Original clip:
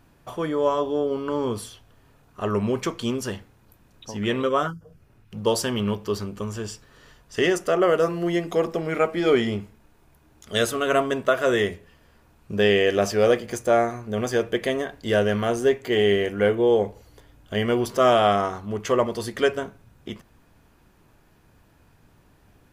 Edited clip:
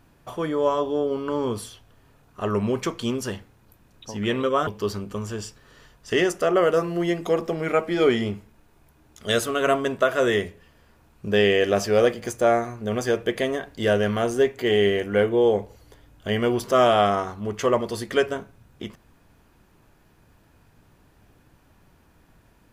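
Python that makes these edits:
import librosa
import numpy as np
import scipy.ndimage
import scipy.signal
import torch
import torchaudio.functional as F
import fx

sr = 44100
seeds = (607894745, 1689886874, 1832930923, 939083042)

y = fx.edit(x, sr, fx.cut(start_s=4.67, length_s=1.26), tone=tone)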